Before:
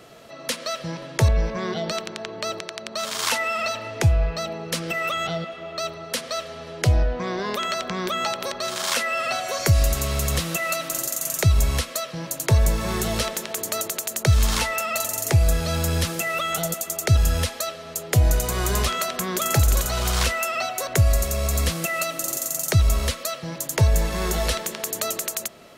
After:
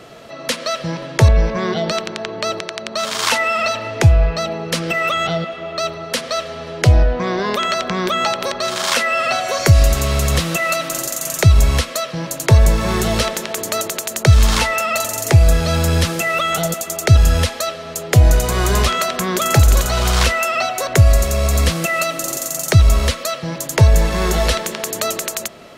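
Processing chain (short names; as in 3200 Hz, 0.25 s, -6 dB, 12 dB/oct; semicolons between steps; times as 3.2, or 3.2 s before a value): high shelf 8400 Hz -8.5 dB; gain +7.5 dB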